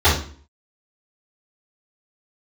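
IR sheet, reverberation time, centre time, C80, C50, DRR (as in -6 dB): 0.45 s, 34 ms, 11.0 dB, 5.0 dB, -12.5 dB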